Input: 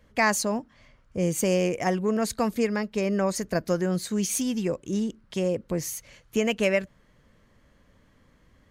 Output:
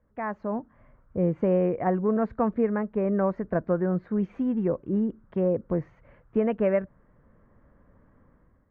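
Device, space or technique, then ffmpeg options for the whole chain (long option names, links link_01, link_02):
action camera in a waterproof case: -af "lowpass=frequency=1500:width=0.5412,lowpass=frequency=1500:width=1.3066,dynaudnorm=framelen=200:gausssize=5:maxgain=11dB,volume=-9dB" -ar 44100 -c:a aac -b:a 96k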